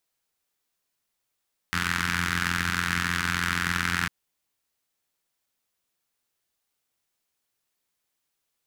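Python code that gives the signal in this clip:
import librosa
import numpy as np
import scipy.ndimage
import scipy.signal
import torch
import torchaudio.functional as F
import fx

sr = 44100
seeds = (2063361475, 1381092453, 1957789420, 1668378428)

y = fx.engine_four(sr, seeds[0], length_s=2.35, rpm=2600, resonances_hz=(99.0, 170.0, 1500.0))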